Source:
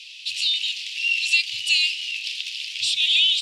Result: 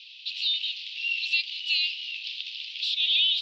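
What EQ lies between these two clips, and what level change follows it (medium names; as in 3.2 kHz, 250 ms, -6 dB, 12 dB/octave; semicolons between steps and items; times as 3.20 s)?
band-pass filter 3.9 kHz, Q 1.9; distance through air 240 m; tilt EQ +1.5 dB/octave; 0.0 dB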